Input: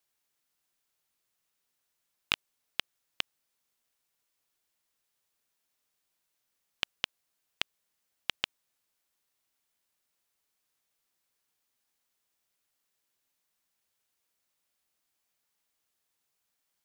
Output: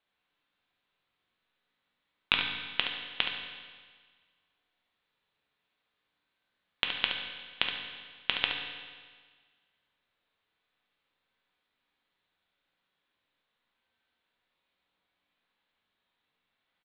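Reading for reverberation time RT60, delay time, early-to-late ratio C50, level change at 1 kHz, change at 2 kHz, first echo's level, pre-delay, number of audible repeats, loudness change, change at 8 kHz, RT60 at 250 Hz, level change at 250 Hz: 1.6 s, 71 ms, 2.5 dB, +6.5 dB, +6.5 dB, -7.5 dB, 4 ms, 1, +4.5 dB, under -25 dB, 1.6 s, +6.5 dB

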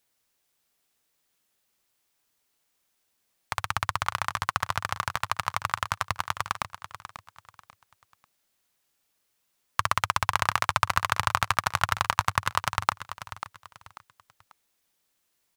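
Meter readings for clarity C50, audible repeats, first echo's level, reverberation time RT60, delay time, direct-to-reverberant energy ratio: none, 3, -12.0 dB, none, 0.541 s, none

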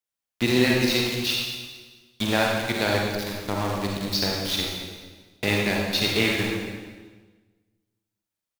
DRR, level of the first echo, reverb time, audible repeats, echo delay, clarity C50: -2.0 dB, -12.0 dB, 1.4 s, 3, 0.223 s, -0.5 dB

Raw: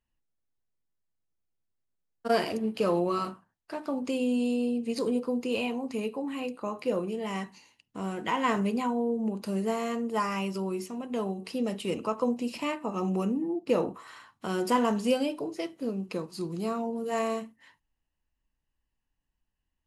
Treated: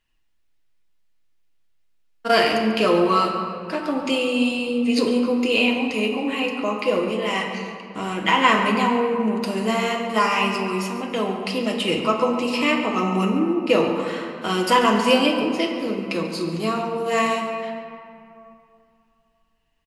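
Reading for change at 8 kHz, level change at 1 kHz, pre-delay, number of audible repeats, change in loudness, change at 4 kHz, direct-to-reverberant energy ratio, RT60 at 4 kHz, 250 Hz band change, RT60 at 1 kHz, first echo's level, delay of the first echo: +8.5 dB, +11.0 dB, 3 ms, 1, +9.0 dB, +15.5 dB, 0.5 dB, 1.3 s, +7.5 dB, 2.8 s, -14.0 dB, 0.141 s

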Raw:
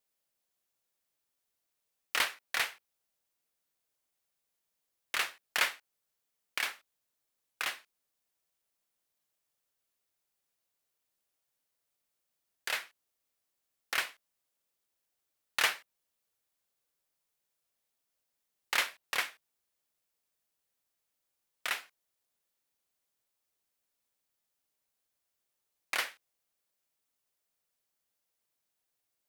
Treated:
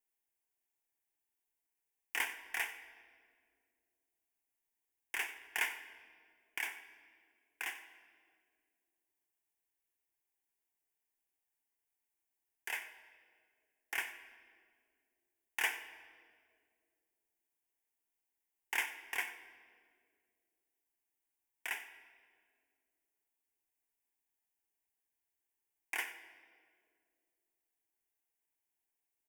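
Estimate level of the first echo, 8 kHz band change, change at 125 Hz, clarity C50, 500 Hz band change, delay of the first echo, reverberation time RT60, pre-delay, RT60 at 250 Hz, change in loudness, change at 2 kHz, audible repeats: -17.0 dB, -6.5 dB, n/a, 10.5 dB, -8.5 dB, 92 ms, 2.2 s, 9 ms, 3.0 s, -6.0 dB, -4.0 dB, 1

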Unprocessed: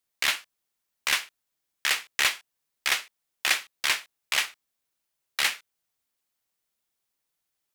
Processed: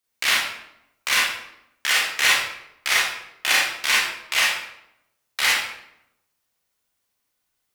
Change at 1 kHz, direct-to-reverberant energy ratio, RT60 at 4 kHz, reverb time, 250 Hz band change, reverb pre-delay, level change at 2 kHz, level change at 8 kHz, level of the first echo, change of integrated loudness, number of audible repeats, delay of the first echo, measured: +7.5 dB, -6.5 dB, 0.55 s, 0.80 s, +7.5 dB, 30 ms, +7.5 dB, +6.0 dB, none, +6.0 dB, none, none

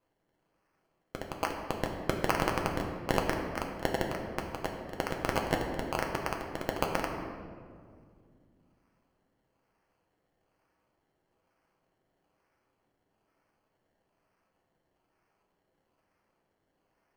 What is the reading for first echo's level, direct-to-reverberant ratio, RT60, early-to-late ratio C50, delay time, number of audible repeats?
none, 1.0 dB, 2.1 s, 4.5 dB, none, none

